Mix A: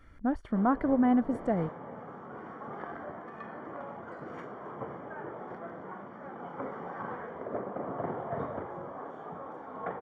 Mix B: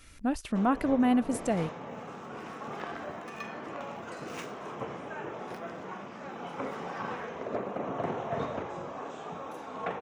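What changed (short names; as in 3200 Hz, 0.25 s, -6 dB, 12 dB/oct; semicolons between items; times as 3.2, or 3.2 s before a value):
background: send +8.5 dB; master: remove polynomial smoothing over 41 samples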